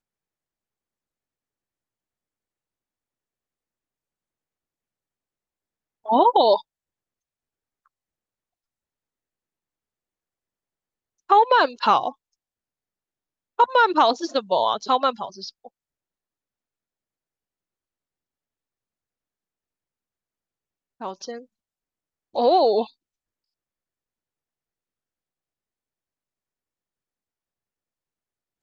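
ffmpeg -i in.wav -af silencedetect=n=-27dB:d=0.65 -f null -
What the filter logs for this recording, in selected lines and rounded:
silence_start: 0.00
silence_end: 6.09 | silence_duration: 6.09
silence_start: 6.58
silence_end: 11.30 | silence_duration: 4.72
silence_start: 12.09
silence_end: 13.59 | silence_duration: 1.50
silence_start: 15.49
silence_end: 21.02 | silence_duration: 5.53
silence_start: 21.36
silence_end: 22.35 | silence_duration: 0.99
silence_start: 22.84
silence_end: 28.63 | silence_duration: 5.79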